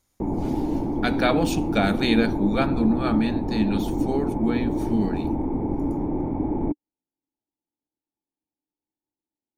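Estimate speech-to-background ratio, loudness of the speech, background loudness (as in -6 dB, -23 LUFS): 1.0 dB, -25.5 LUFS, -26.5 LUFS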